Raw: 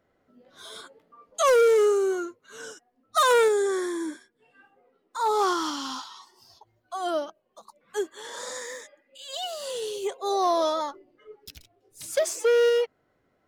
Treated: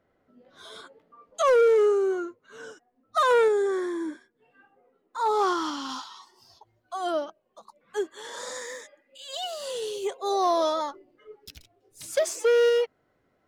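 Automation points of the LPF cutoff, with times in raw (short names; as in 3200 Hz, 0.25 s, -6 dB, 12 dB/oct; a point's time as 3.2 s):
LPF 6 dB/oct
3700 Hz
from 1.42 s 2000 Hz
from 5.18 s 3700 Hz
from 5.89 s 7800 Hz
from 7.12 s 4200 Hz
from 8.1 s 10000 Hz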